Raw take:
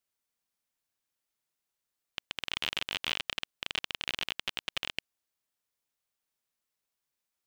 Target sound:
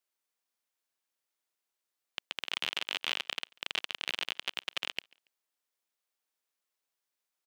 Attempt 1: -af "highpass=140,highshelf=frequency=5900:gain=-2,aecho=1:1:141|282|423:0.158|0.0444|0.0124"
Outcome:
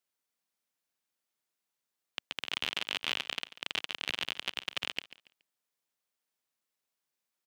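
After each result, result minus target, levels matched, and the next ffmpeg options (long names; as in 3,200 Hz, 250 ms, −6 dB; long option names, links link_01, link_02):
125 Hz band +9.5 dB; echo-to-direct +11.5 dB
-af "highpass=300,highshelf=frequency=5900:gain=-2,aecho=1:1:141|282|423:0.158|0.0444|0.0124"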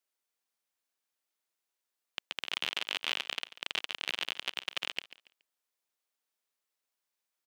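echo-to-direct +11.5 dB
-af "highpass=300,highshelf=frequency=5900:gain=-2,aecho=1:1:141|282:0.0422|0.0118"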